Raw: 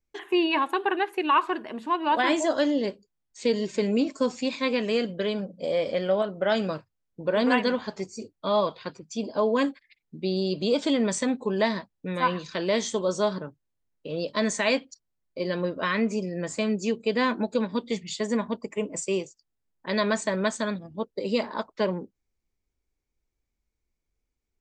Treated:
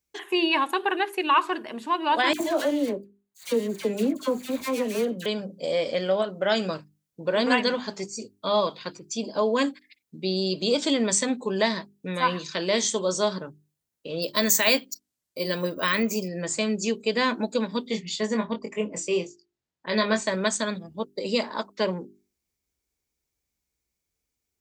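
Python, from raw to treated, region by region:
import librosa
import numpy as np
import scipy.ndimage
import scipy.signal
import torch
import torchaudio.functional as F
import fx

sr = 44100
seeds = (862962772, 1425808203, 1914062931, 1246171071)

y = fx.chain(x, sr, fx.median_filter(points=15),
    fx.peak_eq(hz=5200.0, db=-11.0, octaves=0.2),
    fx.dispersion(late='lows', ms=73.0, hz=1400.0), at=(2.33, 5.26))
y = fx.chain(y, sr, fx.high_shelf(hz=5000.0, db=5.5),
    fx.resample_bad(factor=2, down='filtered', up='hold'), at=(14.22, 16.28))
y = fx.chain(y, sr, fx.air_absorb(metres=110.0),
    fx.doubler(ms=23.0, db=-5.0), at=(17.87, 20.27))
y = scipy.signal.sosfilt(scipy.signal.butter(2, 60.0, 'highpass', fs=sr, output='sos'), y)
y = fx.high_shelf(y, sr, hz=3900.0, db=11.0)
y = fx.hum_notches(y, sr, base_hz=50, count=8)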